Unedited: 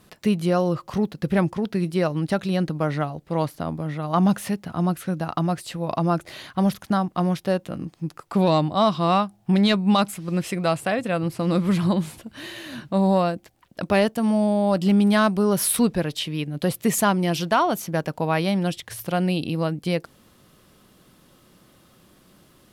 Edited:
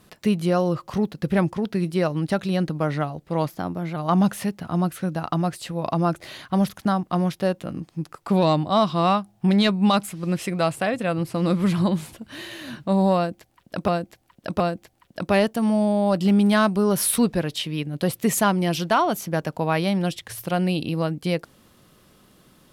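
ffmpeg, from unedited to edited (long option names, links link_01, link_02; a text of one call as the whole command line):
ffmpeg -i in.wav -filter_complex "[0:a]asplit=5[link_01][link_02][link_03][link_04][link_05];[link_01]atrim=end=3.474[link_06];[link_02]atrim=start=3.47:end=4.01,asetpts=PTS-STARTPTS,asetrate=48510,aresample=44100,atrim=end_sample=21649,asetpts=PTS-STARTPTS[link_07];[link_03]atrim=start=4.006:end=13.932[link_08];[link_04]atrim=start=13.208:end=13.932[link_09];[link_05]atrim=start=13.208[link_10];[link_06][link_07]acrossfade=duration=0.004:curve1=hsin:curve2=hsin[link_11];[link_11][link_08]acrossfade=duration=0.004:curve1=hsin:curve2=hsin[link_12];[link_12][link_09]acrossfade=duration=0.004:curve1=hsin:curve2=hsin[link_13];[link_13][link_10]acrossfade=duration=0.004:curve1=hsin:curve2=hsin" out.wav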